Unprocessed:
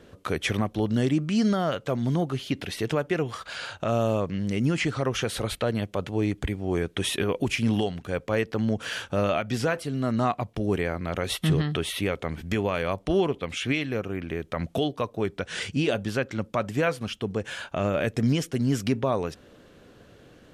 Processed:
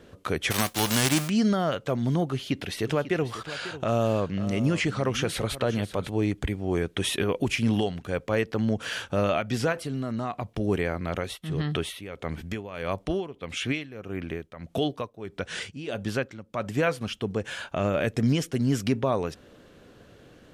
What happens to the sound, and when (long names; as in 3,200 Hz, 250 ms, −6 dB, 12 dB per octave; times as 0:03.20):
0:00.50–0:01.28: spectral envelope flattened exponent 0.3
0:02.32–0:06.10: single-tap delay 545 ms −13.5 dB
0:09.72–0:10.44: downward compressor, threshold −26 dBFS
0:11.11–0:16.66: amplitude tremolo 1.6 Hz, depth 79%